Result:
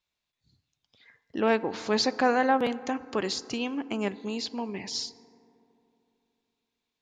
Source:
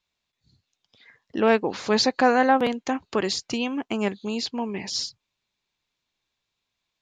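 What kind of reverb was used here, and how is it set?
FDN reverb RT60 3 s, high-frequency decay 0.3×, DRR 16 dB; gain -4.5 dB

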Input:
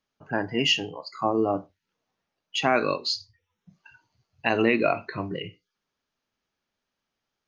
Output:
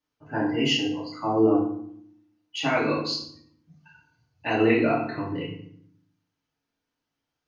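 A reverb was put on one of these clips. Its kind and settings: FDN reverb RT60 0.64 s, low-frequency decay 1.6×, high-frequency decay 0.75×, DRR -7 dB; gain -8.5 dB

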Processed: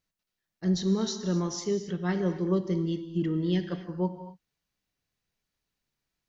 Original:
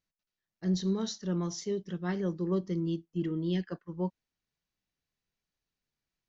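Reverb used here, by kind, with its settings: non-linear reverb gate 0.29 s flat, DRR 8.5 dB; gain +4 dB

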